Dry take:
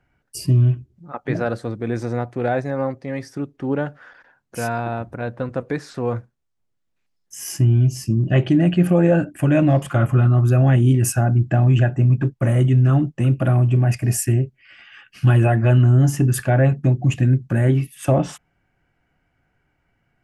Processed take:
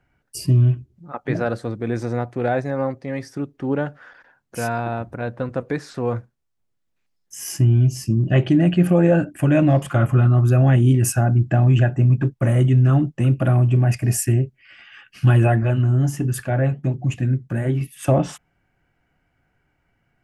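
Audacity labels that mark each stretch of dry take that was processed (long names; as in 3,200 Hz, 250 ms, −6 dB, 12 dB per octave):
15.630000	17.810000	flanger 1.4 Hz, delay 1.3 ms, depth 7.4 ms, regen −73%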